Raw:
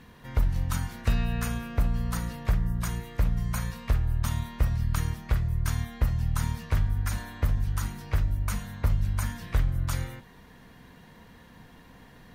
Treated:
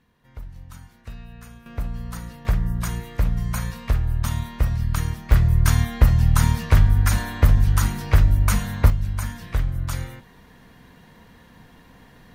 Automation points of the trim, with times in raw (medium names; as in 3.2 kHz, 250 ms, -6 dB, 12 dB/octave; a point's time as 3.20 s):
-13 dB
from 1.66 s -3 dB
from 2.45 s +4 dB
from 5.32 s +10.5 dB
from 8.90 s +2 dB